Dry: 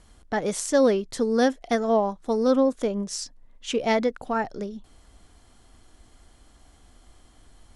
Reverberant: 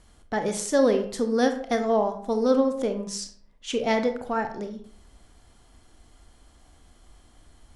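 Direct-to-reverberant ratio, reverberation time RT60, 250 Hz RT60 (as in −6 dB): 7.0 dB, 0.55 s, 0.65 s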